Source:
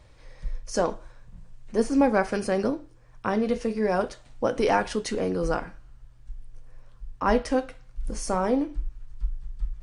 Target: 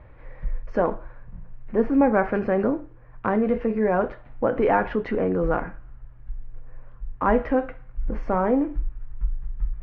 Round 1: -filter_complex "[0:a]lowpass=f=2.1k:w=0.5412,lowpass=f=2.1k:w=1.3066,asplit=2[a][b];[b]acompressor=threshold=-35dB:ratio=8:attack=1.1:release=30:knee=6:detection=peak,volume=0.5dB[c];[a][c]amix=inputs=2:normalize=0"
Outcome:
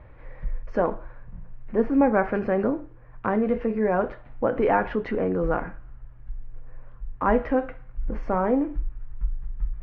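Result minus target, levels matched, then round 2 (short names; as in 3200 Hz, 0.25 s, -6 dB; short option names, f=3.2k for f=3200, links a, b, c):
compressor: peak gain reduction +5.5 dB
-filter_complex "[0:a]lowpass=f=2.1k:w=0.5412,lowpass=f=2.1k:w=1.3066,asplit=2[a][b];[b]acompressor=threshold=-28.5dB:ratio=8:attack=1.1:release=30:knee=6:detection=peak,volume=0.5dB[c];[a][c]amix=inputs=2:normalize=0"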